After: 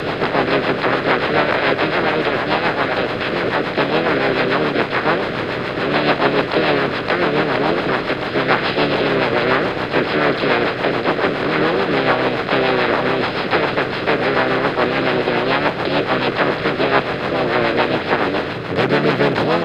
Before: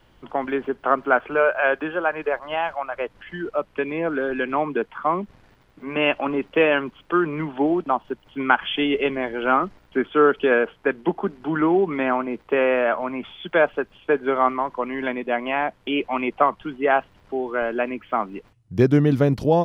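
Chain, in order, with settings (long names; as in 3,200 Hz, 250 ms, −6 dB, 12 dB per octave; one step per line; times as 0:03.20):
compressor on every frequency bin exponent 0.2
pitch-shifted copies added +4 semitones −3 dB, +7 semitones −3 dB
rotating-speaker cabinet horn 7 Hz
level −7 dB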